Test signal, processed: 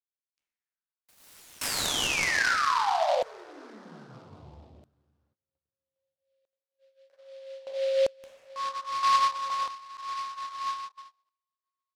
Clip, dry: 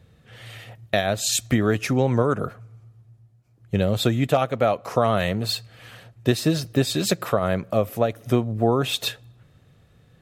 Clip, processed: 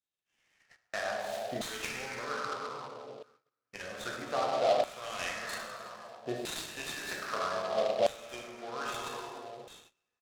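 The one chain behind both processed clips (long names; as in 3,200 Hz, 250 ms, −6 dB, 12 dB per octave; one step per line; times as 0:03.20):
pitch vibrato 2 Hz 12 cents
high-shelf EQ 6,000 Hz +2.5 dB
tuned comb filter 73 Hz, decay 0.33 s, harmonics all, mix 70%
dense smooth reverb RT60 2.8 s, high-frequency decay 0.65×, DRR −2.5 dB
bad sample-rate conversion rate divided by 2×, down none, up zero stuff
parametric band 120 Hz +2 dB 0.21 octaves
downsampling to 22,050 Hz
noise gate −41 dBFS, range −21 dB
auto-filter band-pass saw down 0.62 Hz 620–3,900 Hz
short delay modulated by noise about 3,000 Hz, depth 0.038 ms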